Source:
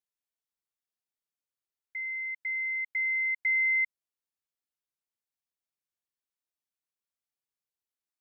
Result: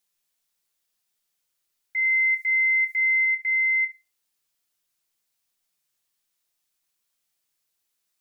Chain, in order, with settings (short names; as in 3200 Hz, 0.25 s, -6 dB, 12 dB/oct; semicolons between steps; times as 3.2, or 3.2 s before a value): high shelf 2000 Hz +8.5 dB; limiter -31 dBFS, peak gain reduction 13 dB; 2.05–3.25 tone controls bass +4 dB, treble +13 dB; shoebox room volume 200 m³, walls furnished, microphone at 0.88 m; gain +7.5 dB